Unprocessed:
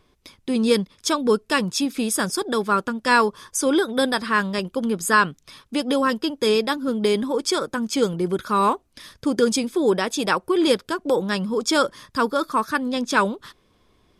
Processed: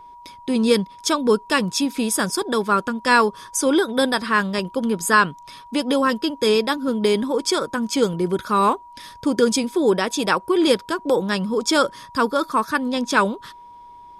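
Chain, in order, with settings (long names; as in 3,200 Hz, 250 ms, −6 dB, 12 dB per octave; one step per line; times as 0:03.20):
steady tone 960 Hz −42 dBFS
level +1.5 dB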